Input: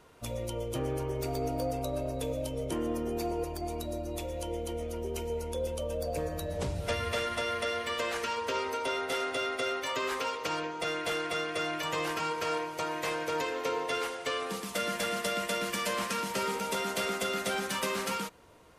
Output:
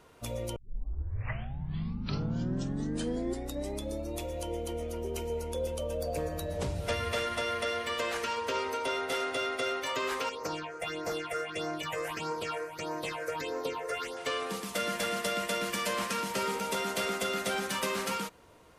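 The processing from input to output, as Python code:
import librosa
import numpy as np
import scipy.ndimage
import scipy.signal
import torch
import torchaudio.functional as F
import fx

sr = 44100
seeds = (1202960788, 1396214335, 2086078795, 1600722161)

y = fx.phaser_stages(x, sr, stages=6, low_hz=220.0, high_hz=3200.0, hz=1.6, feedback_pct=25, at=(10.29, 14.17))
y = fx.edit(y, sr, fx.tape_start(start_s=0.56, length_s=3.65), tone=tone)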